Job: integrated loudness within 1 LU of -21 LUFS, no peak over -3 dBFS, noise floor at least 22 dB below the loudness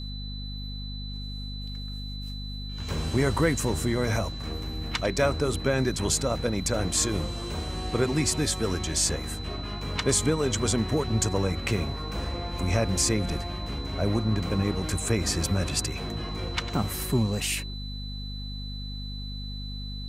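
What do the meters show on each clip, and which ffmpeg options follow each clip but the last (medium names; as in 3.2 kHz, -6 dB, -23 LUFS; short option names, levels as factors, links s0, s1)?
hum 50 Hz; highest harmonic 250 Hz; hum level -33 dBFS; steady tone 4 kHz; tone level -40 dBFS; loudness -28.0 LUFS; peak level -10.5 dBFS; loudness target -21.0 LUFS
-> -af "bandreject=f=50:t=h:w=4,bandreject=f=100:t=h:w=4,bandreject=f=150:t=h:w=4,bandreject=f=200:t=h:w=4,bandreject=f=250:t=h:w=4"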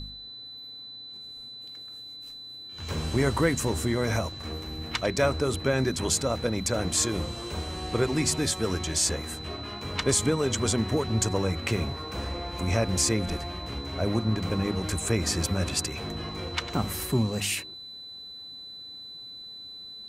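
hum not found; steady tone 4 kHz; tone level -40 dBFS
-> -af "bandreject=f=4000:w=30"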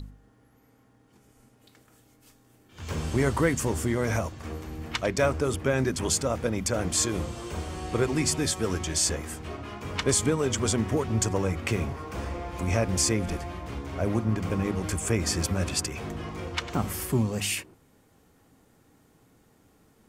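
steady tone not found; loudness -28.0 LUFS; peak level -10.5 dBFS; loudness target -21.0 LUFS
-> -af "volume=2.24"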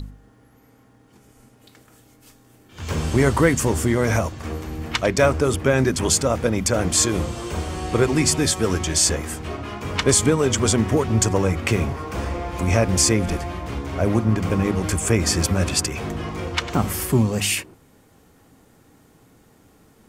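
loudness -21.0 LUFS; peak level -3.5 dBFS; noise floor -55 dBFS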